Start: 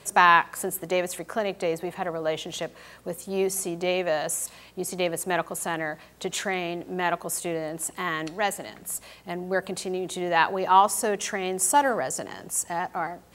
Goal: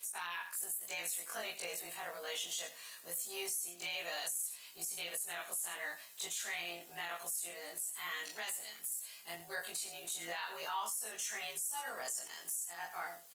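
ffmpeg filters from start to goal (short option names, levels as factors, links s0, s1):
-filter_complex "[0:a]afftfilt=real='re':imag='-im':win_size=2048:overlap=0.75,aderivative,asplit=2[s0][s1];[s1]adelay=19,volume=0.316[s2];[s0][s2]amix=inputs=2:normalize=0,asplit=2[s3][s4];[s4]aecho=0:1:83:0.188[s5];[s3][s5]amix=inputs=2:normalize=0,acompressor=threshold=0.00708:ratio=4,acrossover=split=240[s6][s7];[s7]alimiter=level_in=5.31:limit=0.0631:level=0:latency=1:release=20,volume=0.188[s8];[s6][s8]amix=inputs=2:normalize=0,volume=2.66" -ar 48000 -c:a libopus -b:a 24k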